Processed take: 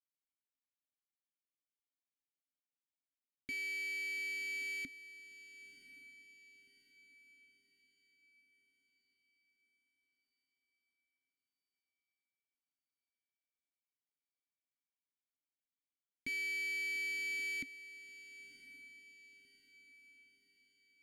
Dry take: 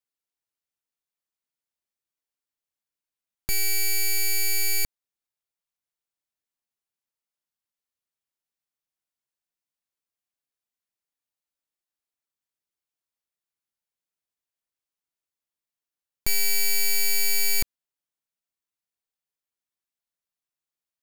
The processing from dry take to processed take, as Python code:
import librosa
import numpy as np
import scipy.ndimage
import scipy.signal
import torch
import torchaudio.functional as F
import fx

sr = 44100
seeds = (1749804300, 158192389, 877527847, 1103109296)

y = fx.vowel_filter(x, sr, vowel='i')
y = fx.echo_diffused(y, sr, ms=1050, feedback_pct=45, wet_db=-14.5)